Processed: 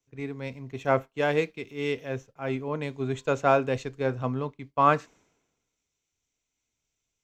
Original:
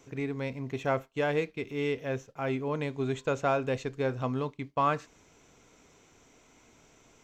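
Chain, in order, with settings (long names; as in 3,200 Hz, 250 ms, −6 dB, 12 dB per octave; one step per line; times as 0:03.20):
multiband upward and downward expander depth 100%
level +1.5 dB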